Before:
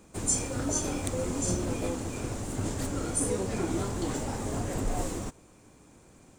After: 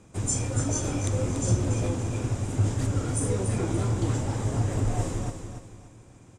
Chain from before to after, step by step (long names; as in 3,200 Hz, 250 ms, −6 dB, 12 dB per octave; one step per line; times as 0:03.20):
low-pass filter 9,000 Hz 12 dB per octave
parametric band 110 Hz +13 dB 0.59 octaves
notch filter 4,300 Hz, Q 12
on a send: repeating echo 287 ms, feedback 34%, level −8 dB